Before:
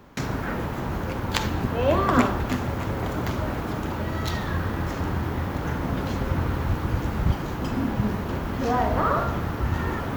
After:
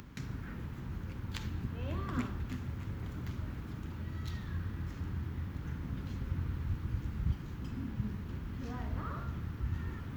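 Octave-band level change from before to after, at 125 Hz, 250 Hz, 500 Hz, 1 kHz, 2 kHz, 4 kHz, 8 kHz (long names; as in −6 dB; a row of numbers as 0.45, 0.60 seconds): −10.0 dB, −14.5 dB, −23.0 dB, −22.5 dB, −18.0 dB, −17.0 dB, below −15 dB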